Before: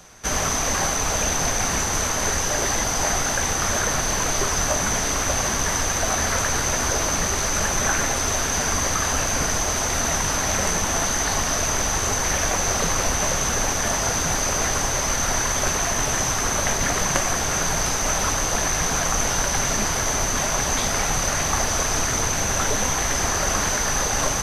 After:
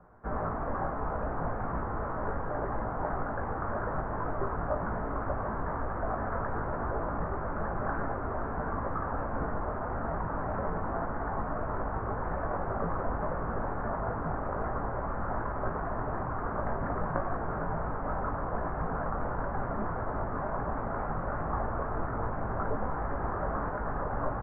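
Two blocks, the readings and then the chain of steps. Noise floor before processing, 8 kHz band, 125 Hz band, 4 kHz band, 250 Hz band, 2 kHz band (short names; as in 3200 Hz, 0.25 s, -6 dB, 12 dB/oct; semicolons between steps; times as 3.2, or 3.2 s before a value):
-24 dBFS, under -40 dB, -7.0 dB, under -40 dB, -6.5 dB, -16.0 dB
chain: steep low-pass 1400 Hz 36 dB/oct; doubler 18 ms -7 dB; gain -7.5 dB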